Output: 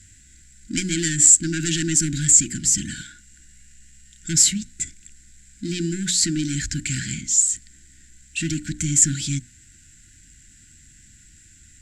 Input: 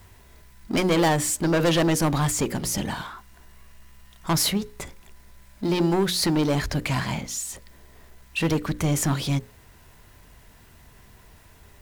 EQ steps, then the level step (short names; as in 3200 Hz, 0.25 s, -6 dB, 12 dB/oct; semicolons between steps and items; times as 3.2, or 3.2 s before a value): brick-wall FIR band-stop 350–1400 Hz; synth low-pass 7500 Hz, resonance Q 13; -1.5 dB